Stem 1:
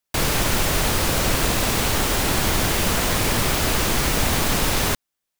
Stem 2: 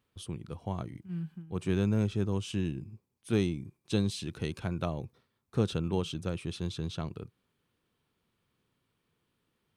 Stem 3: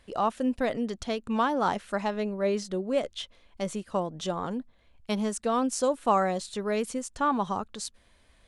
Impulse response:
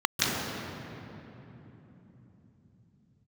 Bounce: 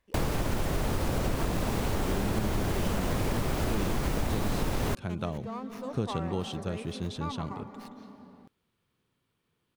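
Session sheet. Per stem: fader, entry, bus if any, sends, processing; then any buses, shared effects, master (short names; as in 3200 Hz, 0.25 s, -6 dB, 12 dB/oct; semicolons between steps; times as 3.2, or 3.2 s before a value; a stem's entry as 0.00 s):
-4.5 dB, 0.00 s, no send, tilt shelf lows +6.5 dB, about 1300 Hz
0.0 dB, 0.40 s, no send, dry
-15.0 dB, 0.00 s, send -19.5 dB, running maximum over 5 samples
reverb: on, RT60 3.5 s, pre-delay 0.143 s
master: compressor, threshold -25 dBFS, peak gain reduction 10 dB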